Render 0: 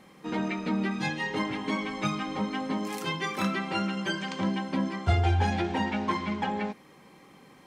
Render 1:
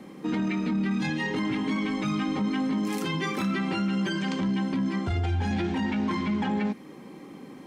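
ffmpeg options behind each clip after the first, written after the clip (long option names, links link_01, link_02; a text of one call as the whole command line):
ffmpeg -i in.wav -filter_complex "[0:a]equalizer=frequency=280:width=0.86:gain=12.5,acrossover=split=220|1000[link_01][link_02][link_03];[link_02]acompressor=threshold=-34dB:ratio=6[link_04];[link_01][link_04][link_03]amix=inputs=3:normalize=0,alimiter=limit=-22.5dB:level=0:latency=1:release=10,volume=2dB" out.wav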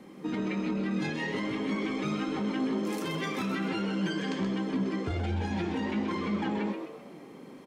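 ffmpeg -i in.wav -filter_complex "[0:a]flanger=delay=2:depth=6.1:regen=70:speed=1.3:shape=sinusoidal,asplit=6[link_01][link_02][link_03][link_04][link_05][link_06];[link_02]adelay=128,afreqshift=120,volume=-7dB[link_07];[link_03]adelay=256,afreqshift=240,volume=-15dB[link_08];[link_04]adelay=384,afreqshift=360,volume=-22.9dB[link_09];[link_05]adelay=512,afreqshift=480,volume=-30.9dB[link_10];[link_06]adelay=640,afreqshift=600,volume=-38.8dB[link_11];[link_01][link_07][link_08][link_09][link_10][link_11]amix=inputs=6:normalize=0" out.wav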